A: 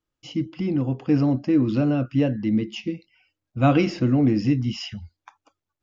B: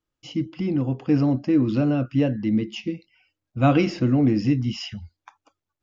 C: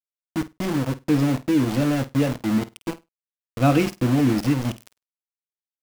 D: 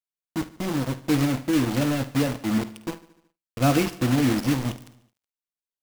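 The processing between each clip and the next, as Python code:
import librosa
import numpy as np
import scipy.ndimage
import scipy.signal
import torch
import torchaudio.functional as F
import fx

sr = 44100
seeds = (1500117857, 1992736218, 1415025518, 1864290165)

y1 = x
y2 = np.where(np.abs(y1) >= 10.0 ** (-24.5 / 20.0), y1, 0.0)
y2 = fx.room_flutter(y2, sr, wall_m=8.7, rt60_s=0.2)
y3 = fx.block_float(y2, sr, bits=3)
y3 = fx.echo_feedback(y3, sr, ms=74, feedback_pct=59, wet_db=-18.0)
y3 = y3 * librosa.db_to_amplitude(-2.5)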